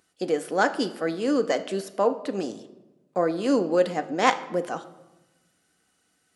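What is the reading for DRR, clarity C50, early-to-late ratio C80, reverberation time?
8.5 dB, 13.5 dB, 16.0 dB, 1.1 s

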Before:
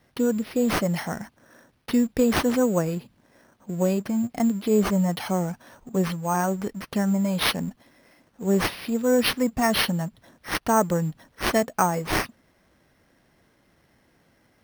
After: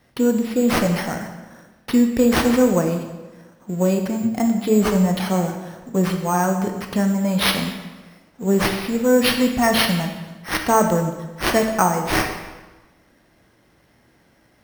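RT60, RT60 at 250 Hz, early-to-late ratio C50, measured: 1.2 s, 1.3 s, 6.5 dB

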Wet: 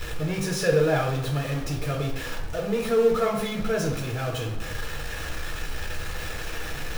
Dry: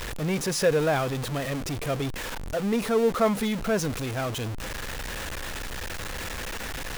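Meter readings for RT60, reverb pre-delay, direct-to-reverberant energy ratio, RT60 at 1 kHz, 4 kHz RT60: 0.85 s, 3 ms, -1.0 dB, 0.85 s, 0.65 s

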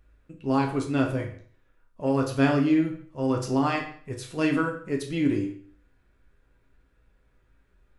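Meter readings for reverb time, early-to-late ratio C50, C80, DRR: 0.50 s, 8.0 dB, 12.0 dB, 0.0 dB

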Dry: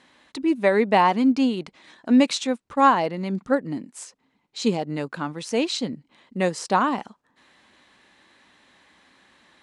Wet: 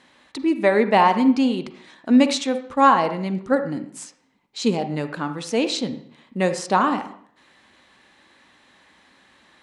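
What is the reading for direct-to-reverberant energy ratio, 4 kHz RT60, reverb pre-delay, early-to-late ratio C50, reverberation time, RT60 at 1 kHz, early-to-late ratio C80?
9.0 dB, 0.55 s, 38 ms, 10.0 dB, 0.55 s, 0.55 s, 14.0 dB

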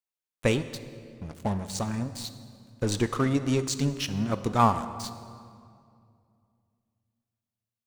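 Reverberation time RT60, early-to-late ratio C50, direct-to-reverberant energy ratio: 2.3 s, 12.0 dB, 11.0 dB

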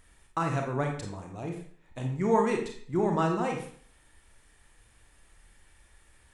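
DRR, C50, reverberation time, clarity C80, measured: 2.0 dB, 4.5 dB, 0.50 s, 9.0 dB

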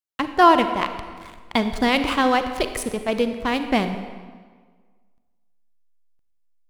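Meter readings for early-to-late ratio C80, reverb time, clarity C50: 10.5 dB, 1.6 s, 9.0 dB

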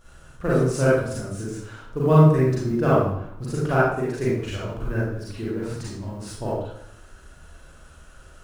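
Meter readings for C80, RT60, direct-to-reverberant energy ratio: 3.5 dB, 0.70 s, -8.5 dB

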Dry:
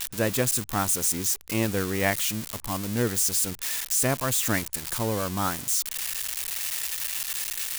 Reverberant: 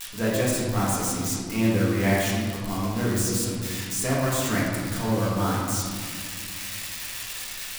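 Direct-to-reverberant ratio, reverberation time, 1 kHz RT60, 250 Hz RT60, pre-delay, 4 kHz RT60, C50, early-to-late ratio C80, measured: -7.0 dB, 2.1 s, 1.9 s, 3.2 s, 4 ms, 1.0 s, -1.0 dB, 1.0 dB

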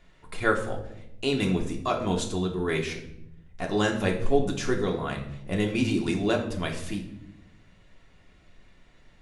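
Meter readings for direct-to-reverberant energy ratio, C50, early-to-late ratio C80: 0.5 dB, 8.5 dB, 11.5 dB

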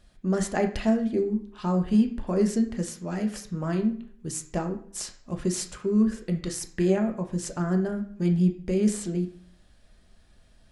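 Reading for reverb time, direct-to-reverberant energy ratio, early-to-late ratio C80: 0.60 s, 3.0 dB, 14.5 dB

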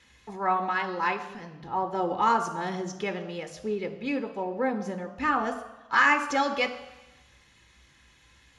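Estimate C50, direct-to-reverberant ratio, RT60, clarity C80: 11.5 dB, 6.5 dB, 1.1 s, 13.5 dB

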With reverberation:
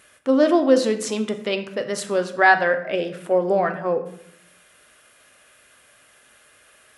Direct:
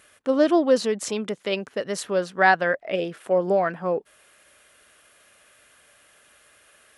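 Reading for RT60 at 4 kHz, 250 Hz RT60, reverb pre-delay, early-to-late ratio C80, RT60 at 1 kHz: 0.50 s, 0.90 s, 8 ms, 14.0 dB, 0.65 s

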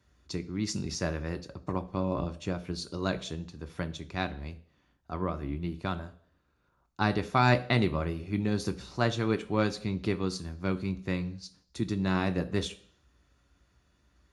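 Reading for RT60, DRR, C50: 0.55 s, 8.5 dB, 17.0 dB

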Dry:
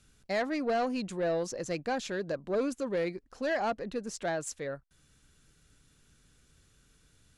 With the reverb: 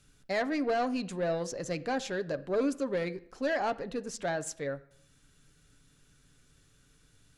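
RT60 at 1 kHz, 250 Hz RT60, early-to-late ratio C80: 0.65 s, 0.70 s, 21.5 dB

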